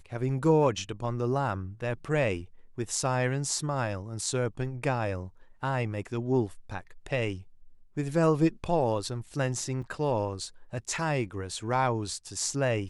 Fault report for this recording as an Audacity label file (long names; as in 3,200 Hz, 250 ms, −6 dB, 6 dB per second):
9.820000	9.830000	drop-out 5.1 ms